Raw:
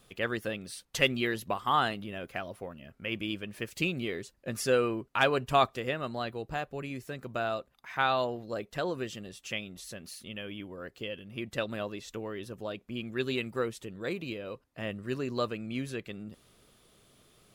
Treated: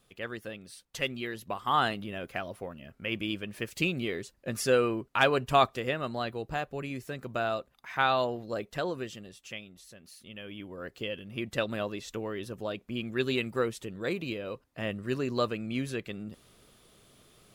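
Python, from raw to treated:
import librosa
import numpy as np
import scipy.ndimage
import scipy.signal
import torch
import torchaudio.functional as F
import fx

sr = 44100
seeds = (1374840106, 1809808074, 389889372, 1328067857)

y = fx.gain(x, sr, db=fx.line((1.32, -6.0), (1.84, 1.5), (8.68, 1.5), (9.95, -9.0), (10.89, 2.5)))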